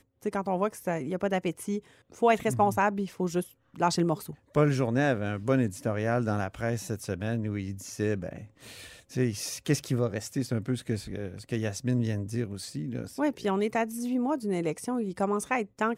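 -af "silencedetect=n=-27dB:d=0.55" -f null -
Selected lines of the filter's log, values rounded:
silence_start: 8.29
silence_end: 9.16 | silence_duration: 0.88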